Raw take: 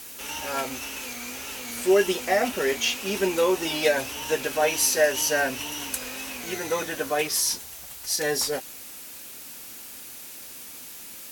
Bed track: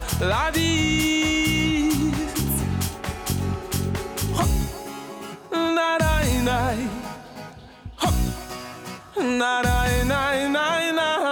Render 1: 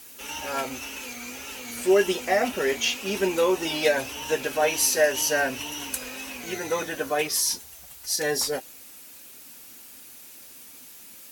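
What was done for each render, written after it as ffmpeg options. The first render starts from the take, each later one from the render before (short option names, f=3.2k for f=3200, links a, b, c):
-af "afftdn=nr=6:nf=-42"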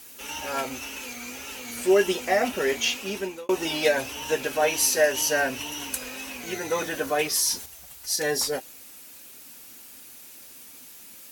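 -filter_complex "[0:a]asettb=1/sr,asplit=3[a][b][c];[a]atrim=end=6.754[d];[b]atrim=start=6.75:end=7.66,asetpts=PTS-STARTPTS,afade=t=in:d=0.004:c=qsin,afade=t=out:st=0.906:d=0.004:c=qsin,aeval=exprs='val(0)+0.5*0.0106*sgn(val(0))':c=same[e];[c]atrim=start=7.656[f];[d][e]acrossfade=d=0.004:c1=hsin:c2=qsin[g];[g][f]acrossfade=d=0.004:c1=qsin:c2=hsin,asplit=2[h][i];[h]atrim=end=3.49,asetpts=PTS-STARTPTS,afade=t=out:st=2.96:d=0.53[j];[i]atrim=start=3.49,asetpts=PTS-STARTPTS,afade=t=in:d=0.004:c=hsin[k];[j][k]concat=n=2:v=0:a=1"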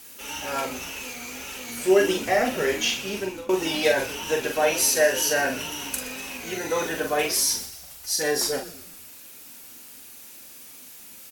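-filter_complex "[0:a]asplit=2[a][b];[b]adelay=43,volume=-5dB[c];[a][c]amix=inputs=2:normalize=0,asplit=5[d][e][f][g][h];[e]adelay=122,afreqshift=-89,volume=-15.5dB[i];[f]adelay=244,afreqshift=-178,volume=-22.2dB[j];[g]adelay=366,afreqshift=-267,volume=-29dB[k];[h]adelay=488,afreqshift=-356,volume=-35.7dB[l];[d][i][j][k][l]amix=inputs=5:normalize=0"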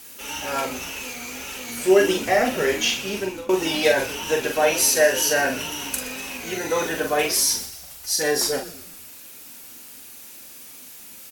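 -af "volume=2.5dB"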